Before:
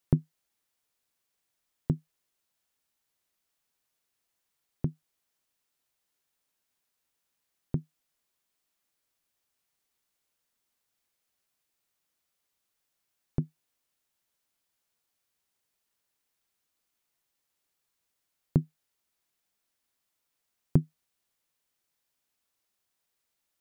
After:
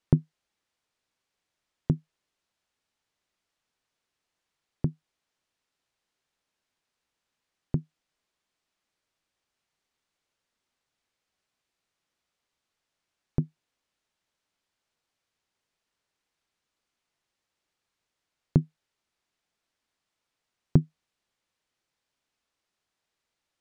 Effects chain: air absorption 75 m; gain +3 dB

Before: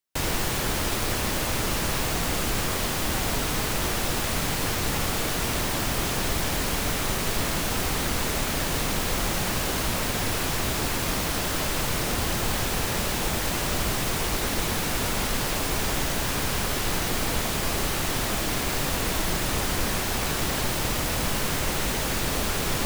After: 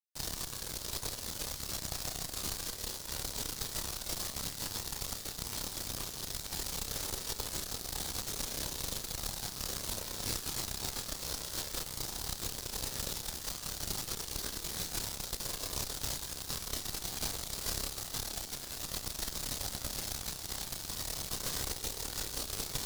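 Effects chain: chorus voices 4, 0.12 Hz, delay 30 ms, depth 1.4 ms; added harmonics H 2 -17 dB, 3 -12 dB, 6 -28 dB, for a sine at -14 dBFS; resonant high shelf 3300 Hz +7.5 dB, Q 1.5; gain -7 dB

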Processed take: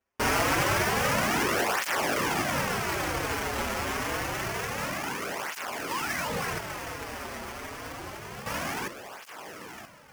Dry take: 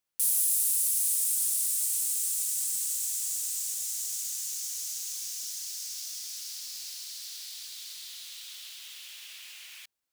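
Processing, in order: bell 5600 Hz +4 dB 2 oct; in parallel at -8 dB: wavefolder -22.5 dBFS; 2.65–3.59 on the sum: notch comb 740 Hz; 8.46–8.88 resonant high shelf 4400 Hz +11.5 dB, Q 1.5; on a send: diffused feedback echo 0.973 s, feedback 43%, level -14.5 dB; 5.87–6.59 on the sum: painted sound rise 770–9000 Hz -30 dBFS; sample-rate reducer 3900 Hz, jitter 20%; tape flanging out of phase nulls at 0.27 Hz, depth 6.8 ms

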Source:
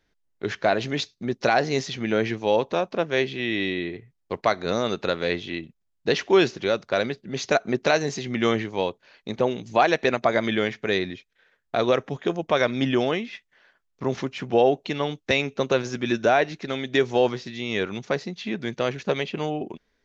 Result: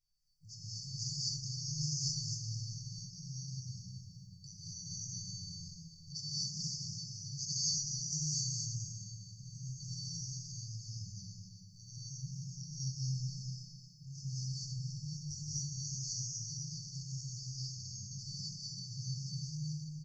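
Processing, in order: regenerating reverse delay 0.131 s, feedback 54%, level -3.5 dB; brick-wall FIR band-stop 170–4500 Hz; low shelf 290 Hz -8.5 dB; notches 60/120 Hz; resonator 650 Hz, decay 0.47 s, mix 90%; outdoor echo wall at 65 m, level -9 dB; non-linear reverb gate 0.28 s rising, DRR -7 dB; gain +11 dB

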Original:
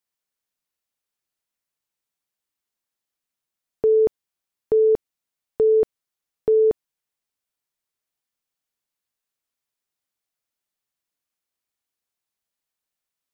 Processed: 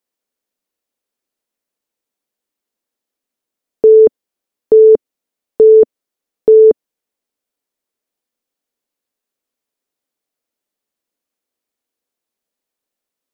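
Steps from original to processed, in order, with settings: graphic EQ 125/250/500 Hz -7/+9/+8 dB; gain +2 dB

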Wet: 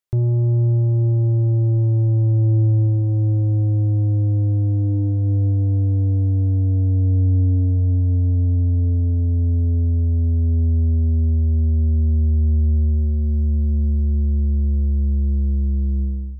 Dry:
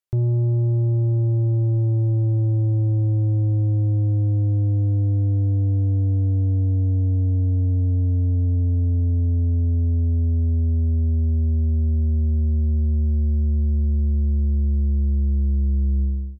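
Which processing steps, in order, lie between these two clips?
FDN reverb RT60 1.9 s, high-frequency decay 0.4×, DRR 19.5 dB; gain +2 dB

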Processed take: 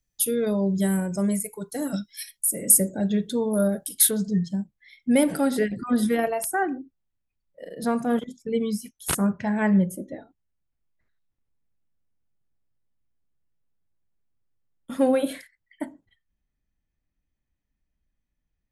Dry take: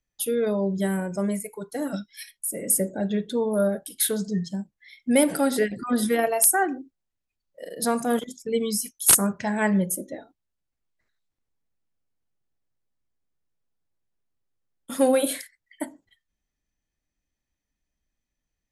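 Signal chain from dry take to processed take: tone controls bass +7 dB, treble +8 dB, from 4.09 s treble -3 dB, from 6.3 s treble -11 dB; gain -2 dB

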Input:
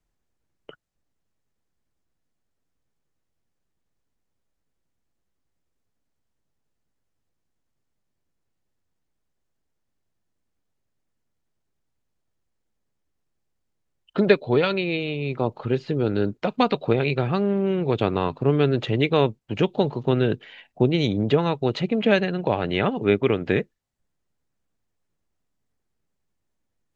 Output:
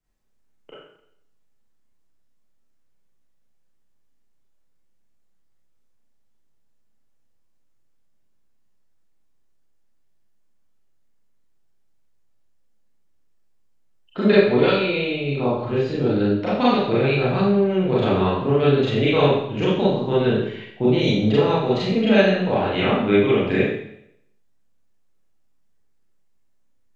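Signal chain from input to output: Schroeder reverb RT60 0.73 s, combs from 29 ms, DRR -9 dB; gain -6 dB

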